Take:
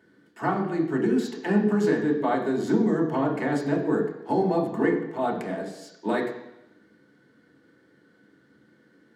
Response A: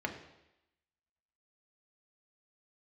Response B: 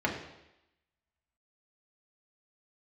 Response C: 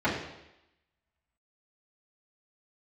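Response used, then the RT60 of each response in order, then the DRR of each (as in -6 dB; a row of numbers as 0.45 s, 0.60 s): B; 0.90 s, 0.90 s, 0.90 s; 2.5 dB, -2.0 dB, -11.0 dB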